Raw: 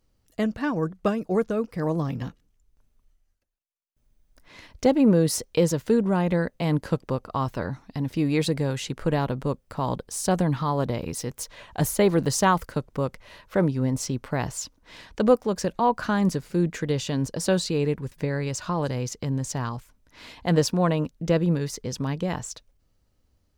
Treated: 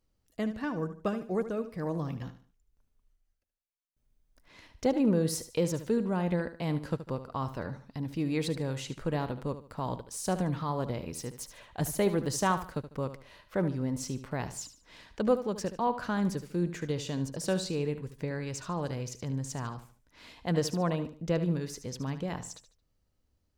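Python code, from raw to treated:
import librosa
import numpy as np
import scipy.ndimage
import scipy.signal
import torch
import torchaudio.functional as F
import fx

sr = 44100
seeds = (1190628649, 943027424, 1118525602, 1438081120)

y = fx.echo_feedback(x, sr, ms=74, feedback_pct=32, wet_db=-12.0)
y = y * librosa.db_to_amplitude(-7.5)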